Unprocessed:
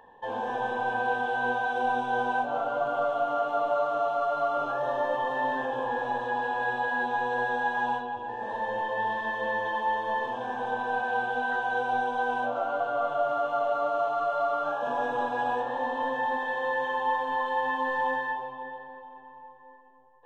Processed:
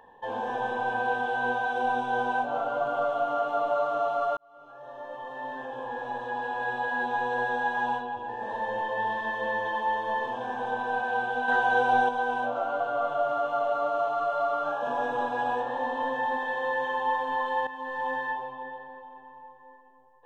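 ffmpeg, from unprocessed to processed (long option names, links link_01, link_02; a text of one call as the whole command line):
ffmpeg -i in.wav -filter_complex "[0:a]asettb=1/sr,asplit=3[link_01][link_02][link_03];[link_01]atrim=end=11.484[link_04];[link_02]atrim=start=11.48:end=12.09,asetpts=PTS-STARTPTS,afade=type=in:duration=0.004:curve=qsin,afade=type=out:start_time=0.606:duration=0.004:curve=qsin,acontrast=28[link_05];[link_03]atrim=start=12.086[link_06];[link_04][link_05]acrossfade=duration=0.004:curve1=hsin:curve2=qsin[link_07];[link_07][link_06]acrossfade=duration=0.004:curve1=qsin:curve2=hsin,asplit=3[link_08][link_09][link_10];[link_08]atrim=end=4.37,asetpts=PTS-STARTPTS,afade=type=out:start_time=4.366:duration=0.004:curve=hsin[link_11];[link_09]atrim=start=4.37:end=17.67,asetpts=PTS-STARTPTS,afade=type=in:duration=2.8,afade=type=out:start_time=13.296:duration=0.004:curve=hsin:silence=0.223872[link_12];[link_10]atrim=start=17.67,asetpts=PTS-STARTPTS,afade=type=in:duration=0.62:silence=0.223872[link_13];[link_11][link_12][link_13]concat=n=3:v=0:a=1" out.wav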